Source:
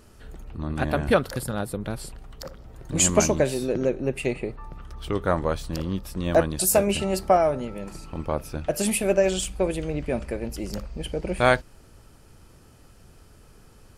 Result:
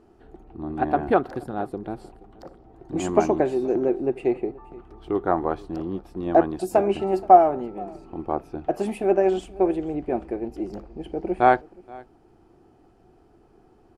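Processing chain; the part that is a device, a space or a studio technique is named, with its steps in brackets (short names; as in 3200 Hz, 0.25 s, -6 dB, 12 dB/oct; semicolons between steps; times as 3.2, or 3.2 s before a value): high shelf 6600 Hz -6 dB; echo 0.476 s -21 dB; dynamic EQ 1300 Hz, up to +6 dB, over -34 dBFS, Q 0.72; inside a helmet (high shelf 5300 Hz -9 dB; small resonant body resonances 350/730 Hz, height 18 dB, ringing for 25 ms); gain -11 dB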